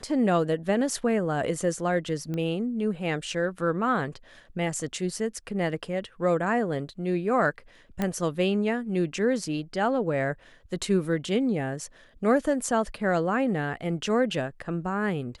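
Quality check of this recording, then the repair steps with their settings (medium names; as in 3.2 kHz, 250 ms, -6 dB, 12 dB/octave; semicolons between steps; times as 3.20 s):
2.34 s: pop -21 dBFS
8.02 s: pop -14 dBFS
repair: de-click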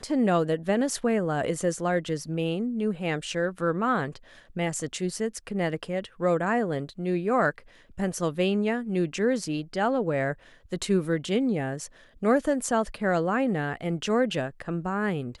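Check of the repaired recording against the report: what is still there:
nothing left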